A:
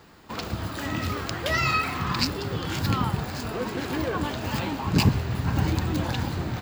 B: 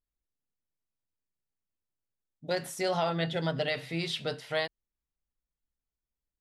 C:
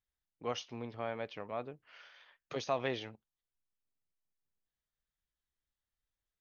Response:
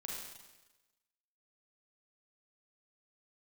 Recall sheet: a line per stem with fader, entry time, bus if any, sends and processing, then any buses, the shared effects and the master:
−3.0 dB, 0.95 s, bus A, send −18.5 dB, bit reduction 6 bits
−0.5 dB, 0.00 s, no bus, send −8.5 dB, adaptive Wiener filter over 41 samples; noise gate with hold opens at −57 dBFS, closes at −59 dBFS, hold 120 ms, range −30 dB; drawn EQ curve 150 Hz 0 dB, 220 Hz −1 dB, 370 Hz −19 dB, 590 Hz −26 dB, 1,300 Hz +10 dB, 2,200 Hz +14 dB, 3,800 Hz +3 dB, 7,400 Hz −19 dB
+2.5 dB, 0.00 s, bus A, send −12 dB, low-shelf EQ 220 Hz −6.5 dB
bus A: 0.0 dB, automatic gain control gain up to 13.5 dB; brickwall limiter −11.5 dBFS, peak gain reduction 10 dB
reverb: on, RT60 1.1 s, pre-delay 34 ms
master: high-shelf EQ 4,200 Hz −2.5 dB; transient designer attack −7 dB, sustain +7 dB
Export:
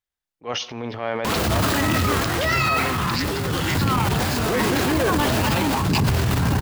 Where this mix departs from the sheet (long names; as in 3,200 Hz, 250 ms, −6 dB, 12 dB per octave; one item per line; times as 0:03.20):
stem A −3.0 dB → +3.5 dB
stem B −0.5 dB → −7.5 dB